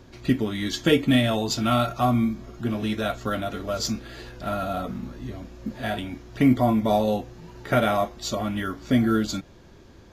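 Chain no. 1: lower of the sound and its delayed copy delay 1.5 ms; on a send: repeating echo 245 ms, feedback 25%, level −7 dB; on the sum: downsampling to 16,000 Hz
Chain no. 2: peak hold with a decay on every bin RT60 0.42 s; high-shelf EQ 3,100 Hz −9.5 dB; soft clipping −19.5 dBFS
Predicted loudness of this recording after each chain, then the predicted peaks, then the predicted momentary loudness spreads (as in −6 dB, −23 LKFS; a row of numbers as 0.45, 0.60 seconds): −26.0, −28.0 LKFS; −8.0, −19.5 dBFS; 13, 11 LU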